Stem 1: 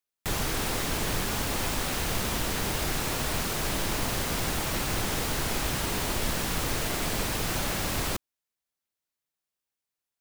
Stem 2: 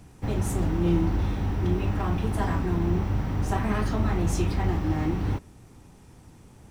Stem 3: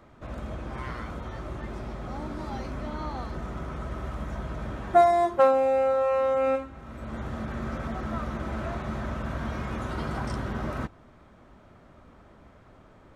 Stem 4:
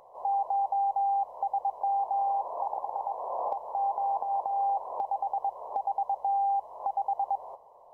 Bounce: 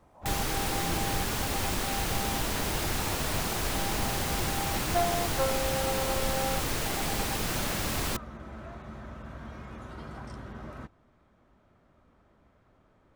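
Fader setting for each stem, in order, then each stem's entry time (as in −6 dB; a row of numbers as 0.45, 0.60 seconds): −1.5, −17.0, −10.5, −11.5 decibels; 0.00, 0.00, 0.00, 0.00 seconds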